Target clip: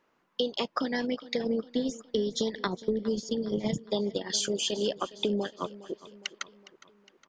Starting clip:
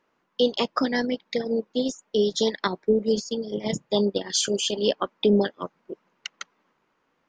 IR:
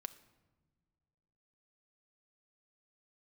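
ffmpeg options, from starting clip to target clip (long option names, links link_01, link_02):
-filter_complex "[0:a]asettb=1/sr,asplit=3[link_01][link_02][link_03];[link_01]atrim=end=1.414[link_04];[link_02]atrim=start=1.41:end=3.78,asetpts=PTS-STARTPTS,afade=type=in:duration=0.004:curve=qsin,afade=type=out:start_time=2.366:duration=0.004:curve=qsin,lowshelf=frequency=220:gain=10.5[link_05];[link_03]atrim=start=3.776[link_06];[link_04][link_05]acrossfade=duration=0.004:curve1=hsin:curve2=qsin[link_07];[link_07][link_06]acrossfade=duration=0.004:curve1=qsin:curve2=hsin,acompressor=threshold=-26dB:ratio=6,aecho=1:1:411|822|1233|1644:0.126|0.0655|0.034|0.0177"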